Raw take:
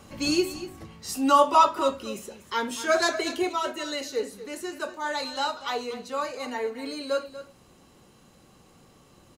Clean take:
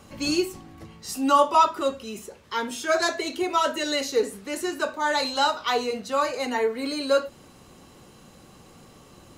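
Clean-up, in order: inverse comb 0.24 s -14 dB; gain correction +6 dB, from 3.49

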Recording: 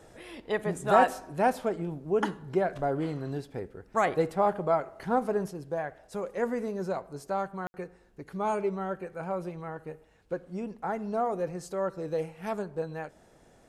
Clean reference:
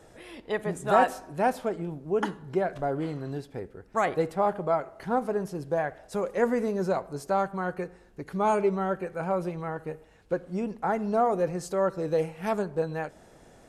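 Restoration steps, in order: room tone fill 7.67–7.74; gain 0 dB, from 5.51 s +5 dB

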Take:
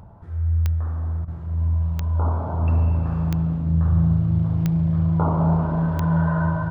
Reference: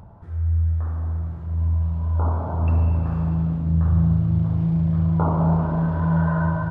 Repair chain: de-click; interpolate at 1.25, 27 ms

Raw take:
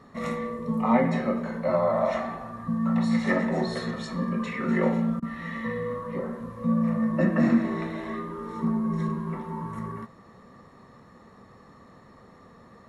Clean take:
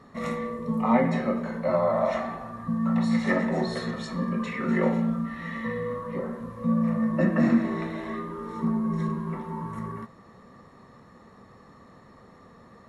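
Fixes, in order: interpolate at 5.2, 22 ms

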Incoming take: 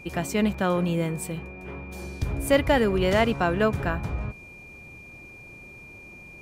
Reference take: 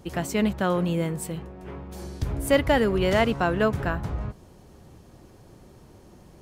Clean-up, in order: notch 2400 Hz, Q 30; interpolate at 0.54, 3.6 ms

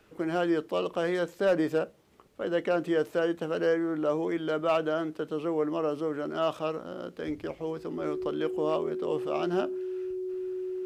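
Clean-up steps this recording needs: clip repair -17.5 dBFS; notch 370 Hz, Q 30

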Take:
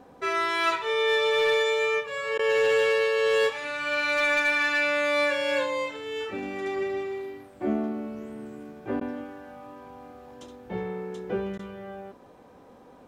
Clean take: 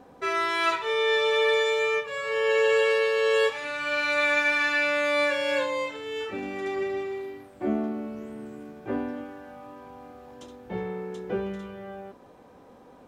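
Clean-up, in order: clip repair -17 dBFS; interpolate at 2.38/9/11.58, 10 ms

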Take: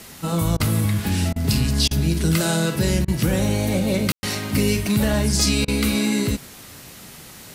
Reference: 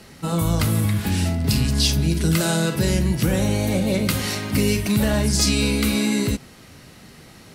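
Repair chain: clip repair -8 dBFS; room tone fill 4.12–4.23; interpolate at 0.57/1.33/1.88/3.05/5.65, 29 ms; noise print and reduce 6 dB

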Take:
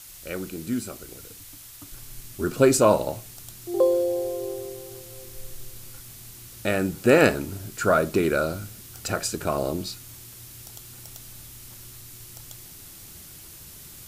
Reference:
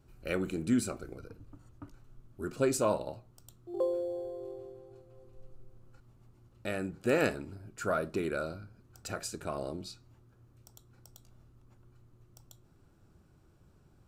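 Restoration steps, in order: noise print and reduce 18 dB; gain 0 dB, from 1.92 s -11 dB

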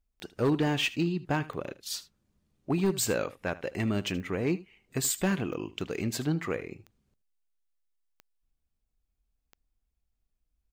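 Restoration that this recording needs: clip repair -20 dBFS; de-click; inverse comb 77 ms -18 dB

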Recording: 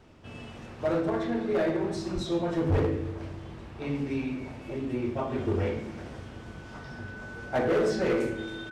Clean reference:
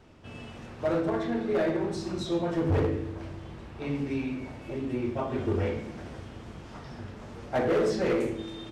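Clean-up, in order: notch 1500 Hz, Q 30; 2.14–2.26 HPF 140 Hz 24 dB/oct; 2.71–2.83 HPF 140 Hz 24 dB/oct; inverse comb 0.309 s -19 dB

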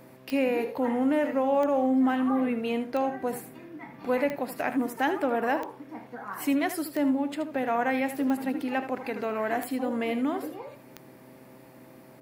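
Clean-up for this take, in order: de-click; de-hum 129 Hz, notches 5; inverse comb 77 ms -11 dB

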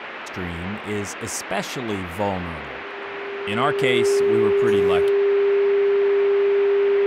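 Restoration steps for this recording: notch 400 Hz, Q 30; noise print and reduce 30 dB

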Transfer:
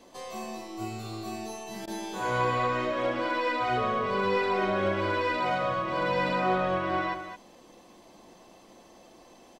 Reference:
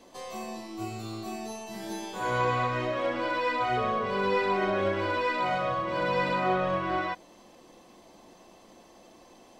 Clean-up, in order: interpolate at 1.86, 14 ms; inverse comb 0.215 s -9.5 dB

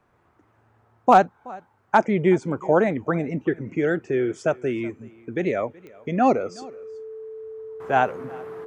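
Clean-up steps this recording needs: clip repair -5.5 dBFS; de-click; notch 440 Hz, Q 30; inverse comb 0.375 s -23 dB

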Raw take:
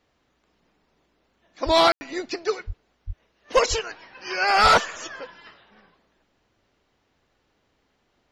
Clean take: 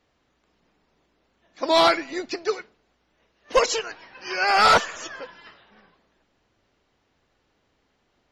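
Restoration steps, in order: de-plosive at 1.65/2.66/3.06/3.69/4.62; room tone fill 1.92–2.01

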